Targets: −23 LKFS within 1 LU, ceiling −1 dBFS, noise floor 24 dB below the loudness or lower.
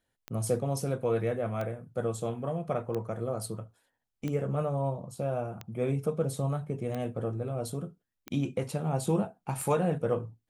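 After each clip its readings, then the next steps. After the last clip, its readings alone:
number of clicks 8; integrated loudness −32.5 LKFS; sample peak −15.0 dBFS; target loudness −23.0 LKFS
→ click removal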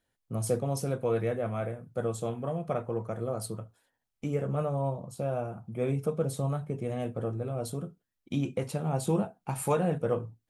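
number of clicks 0; integrated loudness −32.5 LKFS; sample peak −15.0 dBFS; target loudness −23.0 LKFS
→ level +9.5 dB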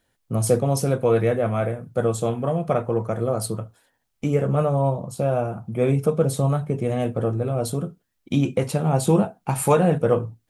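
integrated loudness −23.0 LKFS; sample peak −5.5 dBFS; background noise floor −73 dBFS

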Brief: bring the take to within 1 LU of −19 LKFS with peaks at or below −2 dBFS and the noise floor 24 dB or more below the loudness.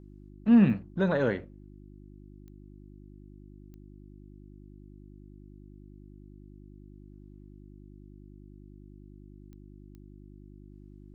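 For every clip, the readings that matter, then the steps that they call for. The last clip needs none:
number of clicks 5; mains hum 50 Hz; hum harmonics up to 350 Hz; level of the hum −47 dBFS; integrated loudness −25.5 LKFS; sample peak −11.5 dBFS; target loudness −19.0 LKFS
→ click removal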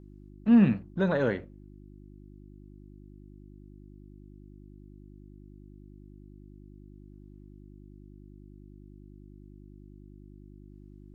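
number of clicks 0; mains hum 50 Hz; hum harmonics up to 350 Hz; level of the hum −47 dBFS
→ hum removal 50 Hz, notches 7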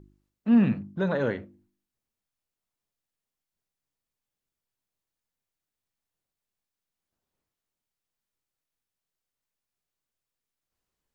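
mains hum none found; integrated loudness −25.5 LKFS; sample peak −11.0 dBFS; target loudness −19.0 LKFS
→ level +6.5 dB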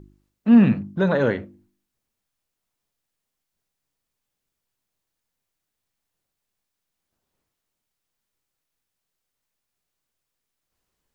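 integrated loudness −19.0 LKFS; sample peak −4.5 dBFS; background noise floor −82 dBFS

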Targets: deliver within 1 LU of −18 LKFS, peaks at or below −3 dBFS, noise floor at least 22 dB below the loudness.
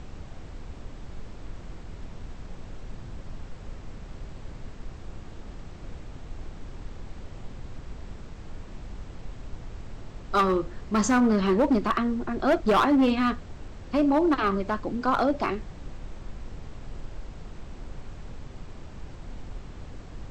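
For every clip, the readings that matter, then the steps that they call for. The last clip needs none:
share of clipped samples 1.0%; peaks flattened at −16.5 dBFS; background noise floor −43 dBFS; target noise floor −47 dBFS; integrated loudness −24.5 LKFS; sample peak −16.5 dBFS; target loudness −18.0 LKFS
→ clipped peaks rebuilt −16.5 dBFS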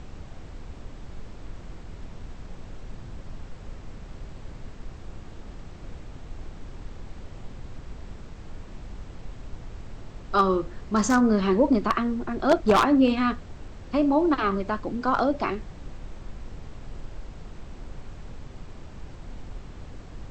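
share of clipped samples 0.0%; background noise floor −43 dBFS; target noise floor −46 dBFS
→ noise reduction from a noise print 6 dB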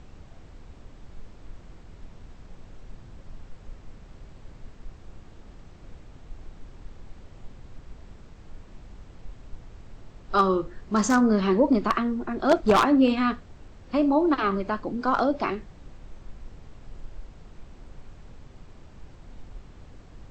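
background noise floor −49 dBFS; integrated loudness −23.5 LKFS; sample peak −7.5 dBFS; target loudness −18.0 LKFS
→ level +5.5 dB
brickwall limiter −3 dBFS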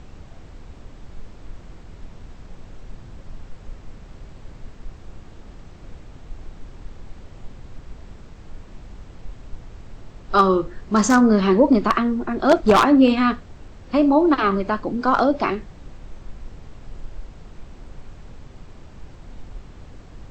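integrated loudness −18.0 LKFS; sample peak −3.0 dBFS; background noise floor −43 dBFS

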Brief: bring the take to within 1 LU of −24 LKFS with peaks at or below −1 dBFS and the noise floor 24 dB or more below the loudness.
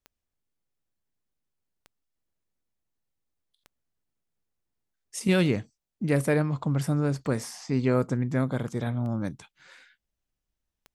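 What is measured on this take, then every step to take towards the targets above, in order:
number of clicks 7; integrated loudness −27.5 LKFS; sample peak −12.5 dBFS; target loudness −24.0 LKFS
→ click removal
level +3.5 dB

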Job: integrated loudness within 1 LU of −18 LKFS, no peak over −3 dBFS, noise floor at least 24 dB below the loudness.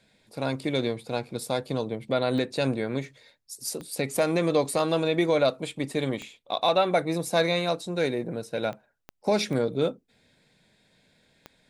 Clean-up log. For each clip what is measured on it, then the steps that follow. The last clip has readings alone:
number of clicks 7; integrated loudness −27.5 LKFS; sample peak −11.0 dBFS; target loudness −18.0 LKFS
→ click removal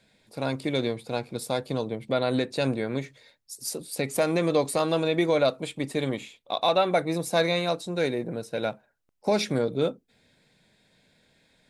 number of clicks 0; integrated loudness −27.5 LKFS; sample peak −11.0 dBFS; target loudness −18.0 LKFS
→ level +9.5 dB
brickwall limiter −3 dBFS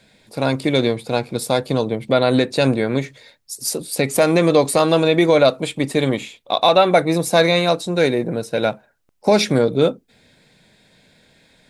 integrated loudness −18.0 LKFS; sample peak −3.0 dBFS; background noise floor −59 dBFS

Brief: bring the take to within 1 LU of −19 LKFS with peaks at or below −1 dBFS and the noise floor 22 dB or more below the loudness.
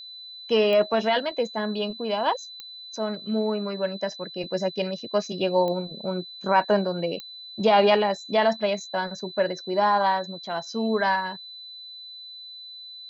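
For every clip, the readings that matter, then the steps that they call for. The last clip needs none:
number of clicks 4; interfering tone 4,000 Hz; level of the tone −39 dBFS; integrated loudness −25.0 LKFS; sample peak −8.5 dBFS; target loudness −19.0 LKFS
→ click removal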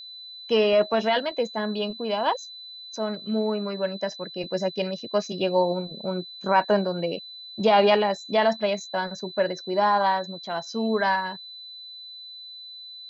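number of clicks 0; interfering tone 4,000 Hz; level of the tone −39 dBFS
→ notch filter 4,000 Hz, Q 30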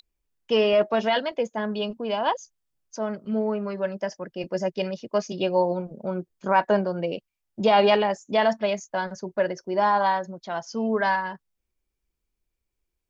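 interfering tone none found; integrated loudness −25.0 LKFS; sample peak −9.0 dBFS; target loudness −19.0 LKFS
→ level +6 dB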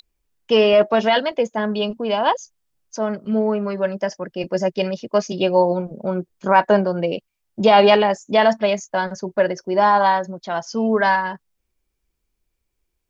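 integrated loudness −19.0 LKFS; sample peak −3.0 dBFS; background noise floor −76 dBFS

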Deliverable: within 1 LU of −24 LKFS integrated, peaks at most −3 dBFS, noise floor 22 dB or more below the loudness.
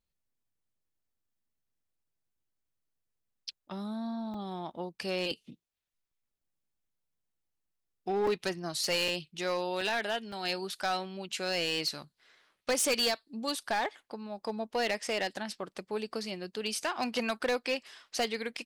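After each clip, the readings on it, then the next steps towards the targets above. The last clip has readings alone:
share of clipped samples 0.6%; peaks flattened at −24.0 dBFS; number of dropouts 5; longest dropout 3.5 ms; integrated loudness −33.0 LKFS; sample peak −24.0 dBFS; target loudness −24.0 LKFS
→ clipped peaks rebuilt −24 dBFS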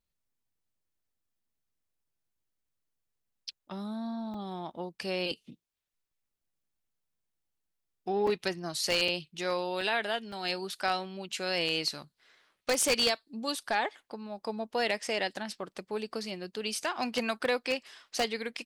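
share of clipped samples 0.0%; number of dropouts 5; longest dropout 3.5 ms
→ repair the gap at 0:04.34/0:08.27/0:09.08/0:09.81/0:10.32, 3.5 ms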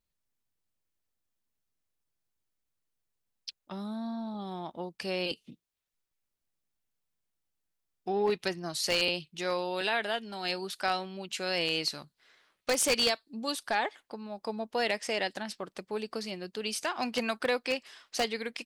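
number of dropouts 0; integrated loudness −32.0 LKFS; sample peak −15.0 dBFS; target loudness −24.0 LKFS
→ level +8 dB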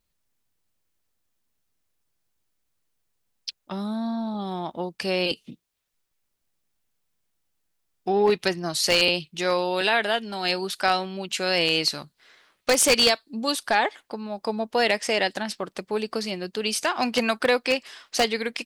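integrated loudness −24.0 LKFS; sample peak −7.0 dBFS; background noise floor −76 dBFS

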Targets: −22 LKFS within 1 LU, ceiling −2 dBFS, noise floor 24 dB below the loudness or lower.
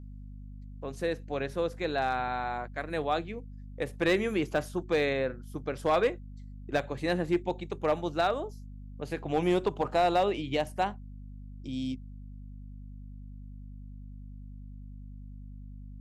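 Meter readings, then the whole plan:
share of clipped samples 0.2%; peaks flattened at −18.5 dBFS; mains hum 50 Hz; hum harmonics up to 250 Hz; level of the hum −42 dBFS; integrated loudness −31.0 LKFS; sample peak −18.5 dBFS; target loudness −22.0 LKFS
→ clipped peaks rebuilt −18.5 dBFS
hum removal 50 Hz, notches 5
level +9 dB

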